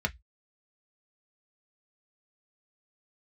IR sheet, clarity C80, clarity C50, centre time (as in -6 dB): 39.5 dB, 26.5 dB, 4 ms